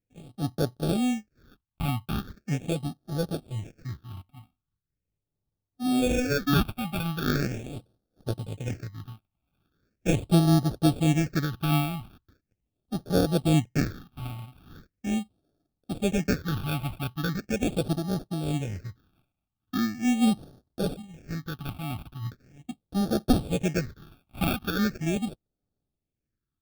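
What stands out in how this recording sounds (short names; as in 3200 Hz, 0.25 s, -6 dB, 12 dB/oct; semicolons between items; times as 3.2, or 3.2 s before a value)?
aliases and images of a low sample rate 1000 Hz, jitter 0%; phasing stages 6, 0.4 Hz, lowest notch 450–2300 Hz; noise-modulated level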